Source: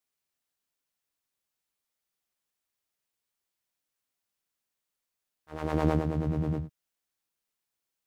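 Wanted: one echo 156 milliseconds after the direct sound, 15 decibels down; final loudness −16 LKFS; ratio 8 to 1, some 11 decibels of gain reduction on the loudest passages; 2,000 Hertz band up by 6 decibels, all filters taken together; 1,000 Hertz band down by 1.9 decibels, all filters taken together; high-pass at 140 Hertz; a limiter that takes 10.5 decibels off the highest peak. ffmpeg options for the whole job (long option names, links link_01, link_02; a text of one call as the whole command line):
ffmpeg -i in.wav -af "highpass=140,equalizer=frequency=1000:width_type=o:gain=-4.5,equalizer=frequency=2000:width_type=o:gain=9,acompressor=threshold=-33dB:ratio=8,alimiter=level_in=9dB:limit=-24dB:level=0:latency=1,volume=-9dB,aecho=1:1:156:0.178,volume=27.5dB" out.wav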